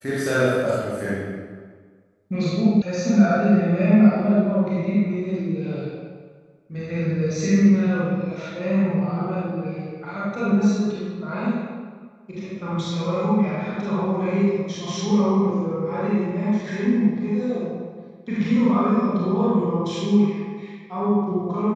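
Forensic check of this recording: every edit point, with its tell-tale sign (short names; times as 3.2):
2.82 sound cut off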